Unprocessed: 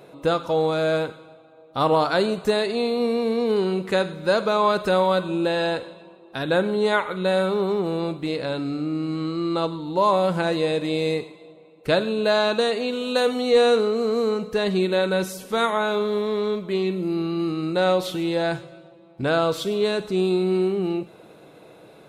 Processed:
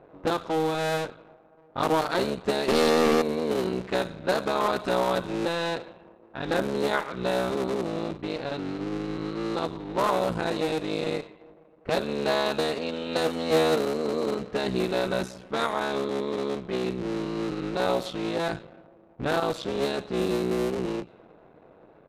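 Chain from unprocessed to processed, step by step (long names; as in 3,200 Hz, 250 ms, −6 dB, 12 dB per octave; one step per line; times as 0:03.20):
sub-harmonics by changed cycles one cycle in 3, muted
0:02.68–0:03.22: leveller curve on the samples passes 5
low-pass that shuts in the quiet parts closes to 1,400 Hz, open at −18 dBFS
downsampling to 32,000 Hz
level −3.5 dB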